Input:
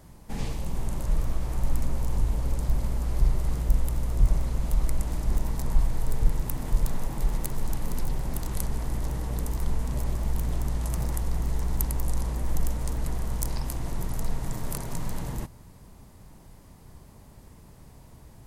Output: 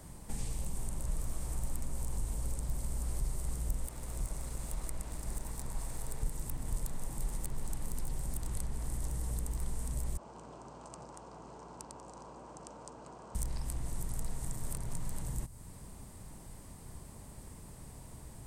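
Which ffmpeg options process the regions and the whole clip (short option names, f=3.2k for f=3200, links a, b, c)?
-filter_complex "[0:a]asettb=1/sr,asplit=3[a][b][c];[a]atrim=end=3.864[d];[b]atrim=start=3.86:end=6.23,asetpts=PTS-STARTPTS,afade=t=in:d=0.004:c=qsin,afade=t=out:st=2.366:d=0.004:c=qsin,lowshelf=f=190:g=-11,bandreject=f=3.1k:w=23,aeval=exprs='sgn(val(0))*max(abs(val(0))-0.00376,0)':c=same[e];[c]atrim=start=6.226[f];[d][e]acrossfade=d=0.004:c1=hsin:c2=qsin[g];[g][f]acrossfade=d=0.004:c1=qsin:c2=hsin,asettb=1/sr,asplit=3[h][i][j];[h]atrim=end=10.174[k];[i]atrim=start=10.17:end=13.35,asetpts=PTS-STARTPTS,afade=t=in:d=0.004:c=qsin,afade=t=out:st=3.176:d=0.004:c=qsin,bandreject=f=1.8k:w=5.8,adynamicsmooth=sensitivity=2.5:basefreq=2.7k,highpass=390,equalizer=f=1k:t=q:w=4:g=3,equalizer=f=2.1k:t=q:w=4:g=-10,equalizer=f=3.6k:t=q:w=4:g=-7,lowpass=f=7.5k:w=0.5412,lowpass=f=7.5k:w=1.3066[l];[j]atrim=start=13.346[m];[k][l]acrossfade=d=0.004:c1=hsin:c2=qsin[n];[n][m]acrossfade=d=0.004:c1=qsin:c2=hsin,equalizer=f=8.5k:t=o:w=0.38:g=11.5,acrossover=split=130|5500[o][p][q];[o]acompressor=threshold=-33dB:ratio=4[r];[p]acompressor=threshold=-49dB:ratio=4[s];[q]acompressor=threshold=-46dB:ratio=4[t];[r][s][t]amix=inputs=3:normalize=0"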